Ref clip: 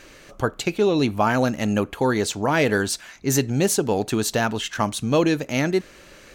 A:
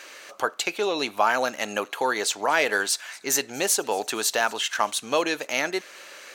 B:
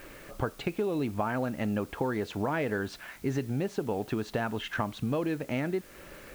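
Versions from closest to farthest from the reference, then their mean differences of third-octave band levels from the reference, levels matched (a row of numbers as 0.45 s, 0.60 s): B, A; 5.0 dB, 8.0 dB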